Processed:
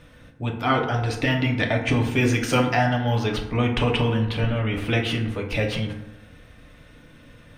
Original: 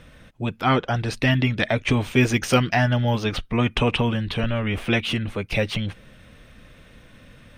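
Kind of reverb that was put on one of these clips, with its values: FDN reverb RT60 0.94 s, low-frequency decay 1.05×, high-frequency decay 0.45×, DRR 1 dB; trim -3 dB

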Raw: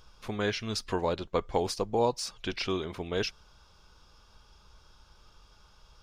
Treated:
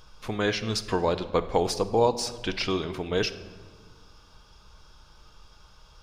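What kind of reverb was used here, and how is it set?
simulated room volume 1400 m³, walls mixed, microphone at 0.51 m; trim +4 dB

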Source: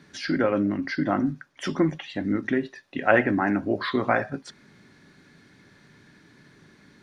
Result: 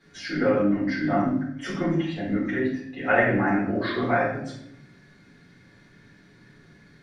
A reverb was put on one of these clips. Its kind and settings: simulated room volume 150 m³, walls mixed, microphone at 4 m; trim -13.5 dB

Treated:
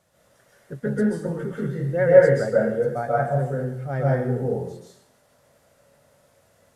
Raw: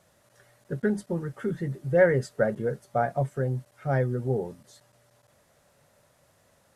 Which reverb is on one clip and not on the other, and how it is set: plate-style reverb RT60 0.74 s, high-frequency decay 0.85×, pre-delay 120 ms, DRR -5.5 dB; trim -3.5 dB

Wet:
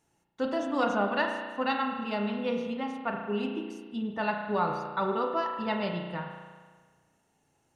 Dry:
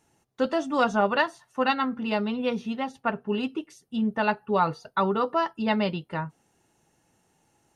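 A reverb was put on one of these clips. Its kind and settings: spring tank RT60 1.5 s, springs 34 ms, chirp 20 ms, DRR 2.5 dB; trim -6 dB

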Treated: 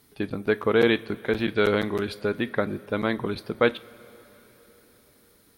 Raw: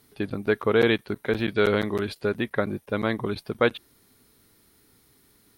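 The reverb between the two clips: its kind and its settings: two-slope reverb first 0.28 s, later 4.6 s, from -19 dB, DRR 13.5 dB

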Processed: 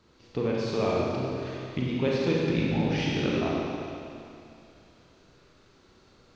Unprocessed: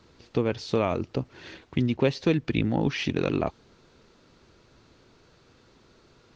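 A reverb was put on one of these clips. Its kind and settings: Schroeder reverb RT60 2.6 s, combs from 31 ms, DRR -4.5 dB; trim -6 dB

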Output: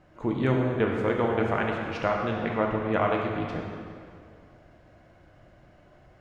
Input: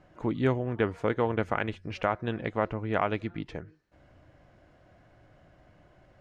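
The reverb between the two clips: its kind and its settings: plate-style reverb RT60 2.3 s, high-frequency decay 0.8×, DRR -0.5 dB

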